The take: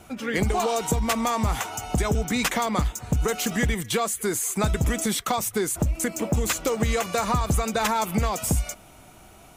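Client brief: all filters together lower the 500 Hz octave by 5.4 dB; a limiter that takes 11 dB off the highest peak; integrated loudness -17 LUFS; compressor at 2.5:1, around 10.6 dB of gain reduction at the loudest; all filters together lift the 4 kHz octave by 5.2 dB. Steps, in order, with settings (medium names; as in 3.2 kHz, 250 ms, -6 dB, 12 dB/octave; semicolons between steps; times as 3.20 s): peaking EQ 500 Hz -7 dB; peaking EQ 4 kHz +6.5 dB; compression 2.5:1, threshold -36 dBFS; trim +22 dB; peak limiter -8.5 dBFS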